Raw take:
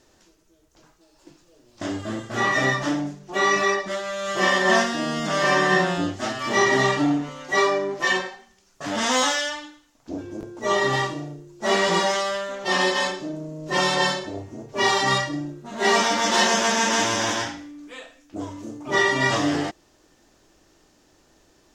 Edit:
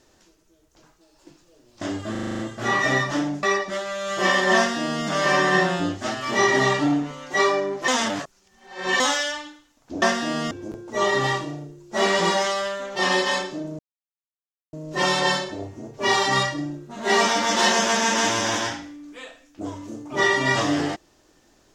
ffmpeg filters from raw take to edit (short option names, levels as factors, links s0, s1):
-filter_complex "[0:a]asplit=14[s0][s1][s2][s3][s4][s5][s6][s7][s8][s9][s10][s11][s12][s13];[s0]atrim=end=2.152[s14];[s1]atrim=start=2.108:end=2.152[s15];[s2]atrim=start=2.108:end=2.152[s16];[s3]atrim=start=2.108:end=2.152[s17];[s4]atrim=start=2.108:end=2.152[s18];[s5]atrim=start=2.108:end=2.152[s19];[s6]atrim=start=2.108:end=2.152[s20];[s7]atrim=start=2.108:end=3.152[s21];[s8]atrim=start=3.608:end=8.062[s22];[s9]atrim=start=8.058:end=9.182,asetpts=PTS-STARTPTS,areverse[s23];[s10]atrim=start=9.178:end=10.202[s24];[s11]atrim=start=4.738:end=5.232[s25];[s12]atrim=start=10.198:end=13.48,asetpts=PTS-STARTPTS,afade=t=out:st=3.278:d=0.004:c=hsin,apad=pad_dur=0.94[s26];[s13]atrim=start=13.48,asetpts=PTS-STARTPTS,afade=t=in:d=0.004:c=hsin[s27];[s14][s15]acrossfade=d=0.004:c1=hsin:c2=hsin[s28];[s28][s16]acrossfade=d=0.004:c1=hsin:c2=hsin[s29];[s29][s17]acrossfade=d=0.004:c1=hsin:c2=hsin[s30];[s30][s18]acrossfade=d=0.004:c1=hsin:c2=hsin[s31];[s31][s19]acrossfade=d=0.004:c1=hsin:c2=hsin[s32];[s32][s20]acrossfade=d=0.004:c1=hsin:c2=hsin[s33];[s33][s21]acrossfade=d=0.004:c1=hsin:c2=hsin[s34];[s34][s22]acrossfade=d=0.004:c1=hsin:c2=hsin[s35];[s35][s23]acrossfade=d=0.004:c1=hsin:c2=hsin[s36];[s36][s24]acrossfade=d=0.004:c1=hsin:c2=hsin[s37];[s37][s25]acrossfade=d=0.004:c1=hsin:c2=hsin[s38];[s26][s27]concat=n=2:v=0:a=1[s39];[s38][s39]acrossfade=d=0.004:c1=hsin:c2=hsin"